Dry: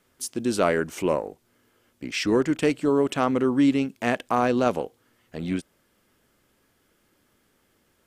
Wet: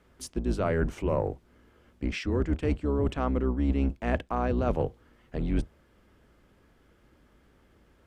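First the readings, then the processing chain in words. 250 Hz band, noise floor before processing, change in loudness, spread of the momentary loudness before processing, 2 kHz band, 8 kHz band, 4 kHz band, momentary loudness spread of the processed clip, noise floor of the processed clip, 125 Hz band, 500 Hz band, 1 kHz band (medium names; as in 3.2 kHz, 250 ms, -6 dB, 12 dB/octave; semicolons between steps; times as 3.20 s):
-6.0 dB, -67 dBFS, -5.5 dB, 12 LU, -8.0 dB, under -10 dB, -10.0 dB, 8 LU, -63 dBFS, +4.0 dB, -6.0 dB, -7.0 dB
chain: octave divider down 2 oct, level +3 dB; low-pass 1.8 kHz 6 dB/octave; reverse; compression 8:1, threshold -28 dBFS, peak gain reduction 16 dB; reverse; trim +4.5 dB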